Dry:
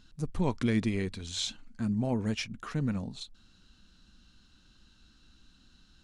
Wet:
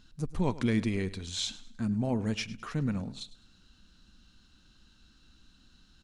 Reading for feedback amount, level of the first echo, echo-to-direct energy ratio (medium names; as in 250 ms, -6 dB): 32%, -17.5 dB, -17.0 dB